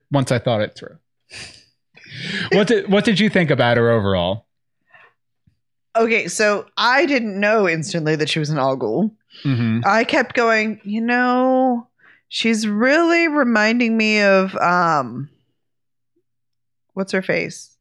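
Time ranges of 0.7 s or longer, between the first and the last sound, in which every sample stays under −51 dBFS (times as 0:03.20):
0:15.35–0:16.95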